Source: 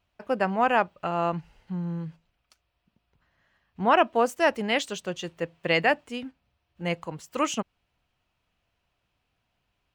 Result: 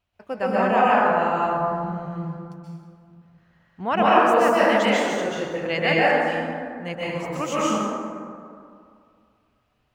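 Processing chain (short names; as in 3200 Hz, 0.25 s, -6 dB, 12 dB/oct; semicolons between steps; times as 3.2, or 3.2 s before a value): plate-style reverb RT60 2.3 s, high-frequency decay 0.4×, pre-delay 0.115 s, DRR -9 dB; gain -4 dB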